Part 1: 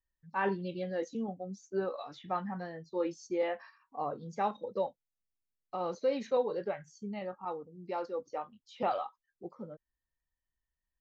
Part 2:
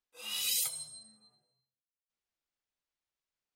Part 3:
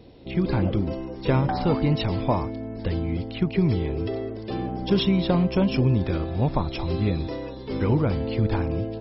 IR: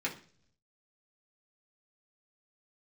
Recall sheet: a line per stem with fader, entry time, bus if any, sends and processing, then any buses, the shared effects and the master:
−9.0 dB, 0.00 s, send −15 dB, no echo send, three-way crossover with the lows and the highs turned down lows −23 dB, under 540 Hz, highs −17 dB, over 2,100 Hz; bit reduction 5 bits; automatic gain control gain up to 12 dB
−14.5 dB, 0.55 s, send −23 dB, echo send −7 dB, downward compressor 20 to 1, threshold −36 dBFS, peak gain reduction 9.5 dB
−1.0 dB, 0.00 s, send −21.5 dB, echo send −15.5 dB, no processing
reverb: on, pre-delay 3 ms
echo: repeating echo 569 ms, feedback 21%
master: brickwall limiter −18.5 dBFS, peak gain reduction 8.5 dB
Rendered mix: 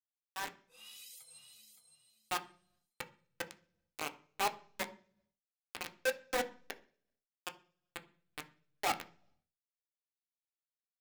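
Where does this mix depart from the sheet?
stem 1 −9.0 dB → −16.0 dB
stem 3: muted
reverb return +8.5 dB

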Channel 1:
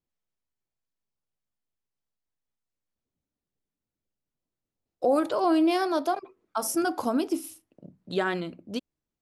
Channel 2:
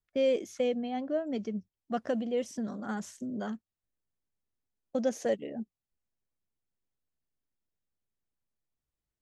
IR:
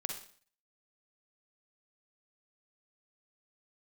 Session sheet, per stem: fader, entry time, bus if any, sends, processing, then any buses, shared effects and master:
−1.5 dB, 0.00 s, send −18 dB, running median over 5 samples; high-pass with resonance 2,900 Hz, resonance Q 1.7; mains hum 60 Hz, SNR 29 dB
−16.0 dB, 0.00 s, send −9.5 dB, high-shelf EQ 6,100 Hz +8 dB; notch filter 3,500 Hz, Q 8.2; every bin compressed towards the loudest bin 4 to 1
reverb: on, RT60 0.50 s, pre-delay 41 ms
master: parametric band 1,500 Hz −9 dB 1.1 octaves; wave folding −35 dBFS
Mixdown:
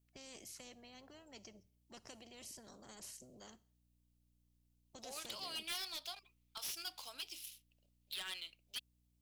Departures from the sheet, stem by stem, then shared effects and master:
stem 1: send off
reverb return −6.5 dB

